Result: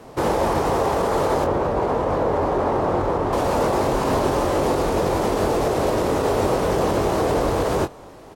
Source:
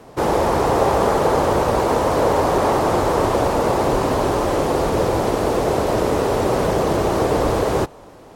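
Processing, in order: peak limiter -12.5 dBFS, peak gain reduction 8 dB; 1.44–3.33 s: low-pass 1.4 kHz 6 dB/octave; doubling 22 ms -7 dB

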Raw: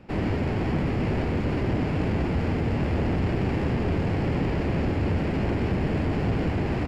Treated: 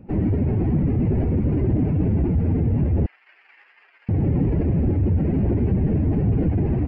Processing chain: spectral contrast enhancement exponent 1.8; 3.06–4.09 s: high-pass 1.5 kHz 24 dB/octave; trim +5.5 dB

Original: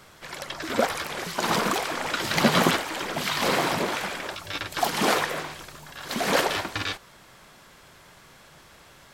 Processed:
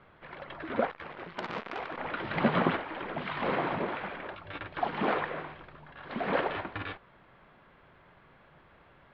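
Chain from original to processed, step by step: Bessel low-pass 1.9 kHz, order 8; 0.89–1.98 s: transformer saturation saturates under 2.2 kHz; trim -5 dB

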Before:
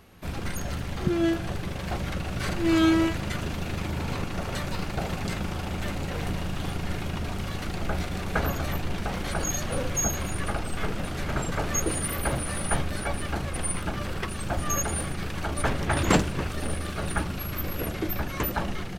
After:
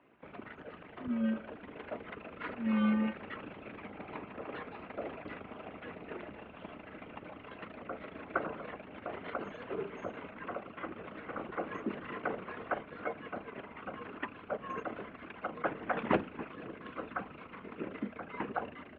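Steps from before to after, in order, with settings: resonances exaggerated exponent 1.5; mistuned SSB -110 Hz 350–3100 Hz; trim -3.5 dB

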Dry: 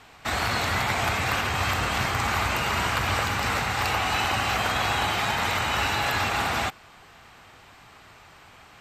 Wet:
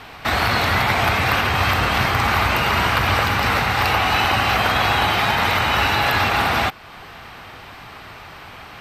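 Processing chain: peaking EQ 7.3 kHz -11.5 dB 0.49 oct; in parallel at 0 dB: compression, threshold -40 dBFS, peak gain reduction 17 dB; on the sum: trim +6 dB

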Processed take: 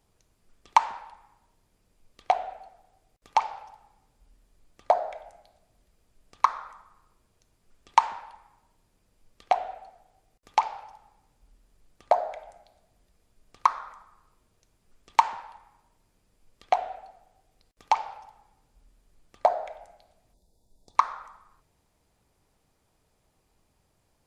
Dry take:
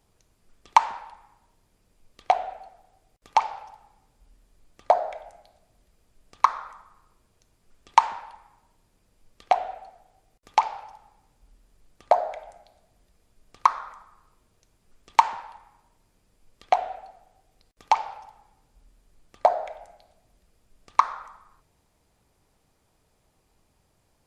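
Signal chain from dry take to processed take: time-frequency box 20.34–20.96 s, 1–3.4 kHz -20 dB; trim -2.5 dB

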